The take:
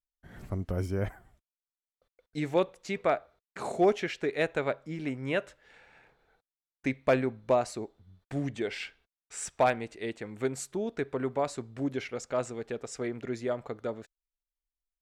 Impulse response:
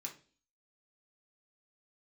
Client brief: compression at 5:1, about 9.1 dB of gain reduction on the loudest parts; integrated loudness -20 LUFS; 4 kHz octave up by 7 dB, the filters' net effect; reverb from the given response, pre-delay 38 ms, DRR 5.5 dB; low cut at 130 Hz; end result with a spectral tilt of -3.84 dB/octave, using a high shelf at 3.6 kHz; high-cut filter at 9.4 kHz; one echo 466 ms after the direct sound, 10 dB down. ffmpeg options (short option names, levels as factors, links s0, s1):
-filter_complex "[0:a]highpass=130,lowpass=9400,highshelf=f=3600:g=4,equalizer=f=4000:t=o:g=6.5,acompressor=threshold=0.0355:ratio=5,aecho=1:1:466:0.316,asplit=2[s0][s1];[1:a]atrim=start_sample=2205,adelay=38[s2];[s1][s2]afir=irnorm=-1:irlink=0,volume=0.75[s3];[s0][s3]amix=inputs=2:normalize=0,volume=5.62"